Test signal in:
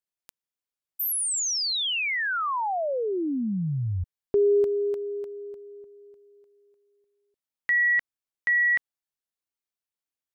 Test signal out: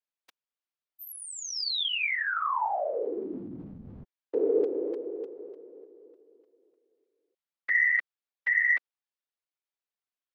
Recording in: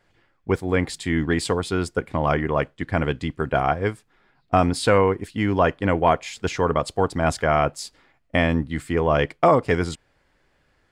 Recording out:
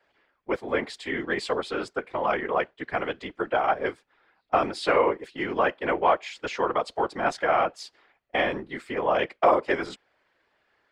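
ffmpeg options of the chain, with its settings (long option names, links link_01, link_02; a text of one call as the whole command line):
ffmpeg -i in.wav -filter_complex "[0:a]afftfilt=real='hypot(re,im)*cos(2*PI*random(0))':imag='hypot(re,im)*sin(2*PI*random(1))':win_size=512:overlap=0.75,acrossover=split=320 5100:gain=0.112 1 0.178[link_01][link_02][link_03];[link_01][link_02][link_03]amix=inputs=3:normalize=0,acontrast=87,volume=-3dB" out.wav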